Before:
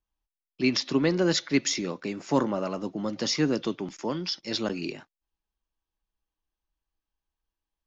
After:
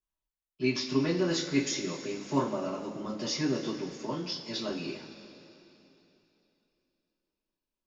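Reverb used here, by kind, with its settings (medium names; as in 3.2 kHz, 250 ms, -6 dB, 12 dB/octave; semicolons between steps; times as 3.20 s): two-slope reverb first 0.24 s, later 3.2 s, from -18 dB, DRR -8 dB; trim -13 dB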